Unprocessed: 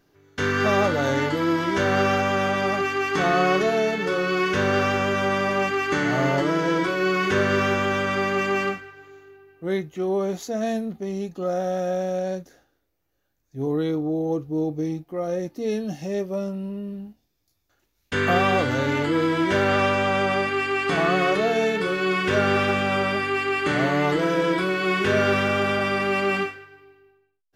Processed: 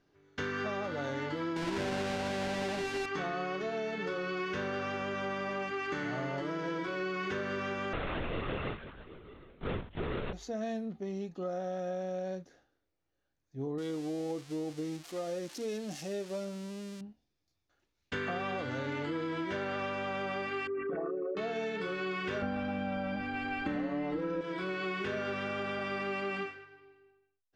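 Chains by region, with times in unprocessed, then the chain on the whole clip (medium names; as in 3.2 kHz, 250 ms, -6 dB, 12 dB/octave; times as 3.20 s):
1.56–3.06 s: square wave that keeps the level + band-stop 1.2 kHz, Q 8.8
7.93–10.33 s: square wave that keeps the level + LPC vocoder at 8 kHz whisper
13.78–17.01 s: zero-crossing glitches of -22.5 dBFS + tone controls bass -5 dB, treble +2 dB
20.67–21.37 s: resonances exaggerated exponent 3 + distance through air 460 m
22.42–24.41 s: tilt EQ -3 dB/octave + comb 3.8 ms, depth 96%
whole clip: low-pass 5.6 kHz 12 dB/octave; hum notches 50/100 Hz; compression, threshold -25 dBFS; trim -7.5 dB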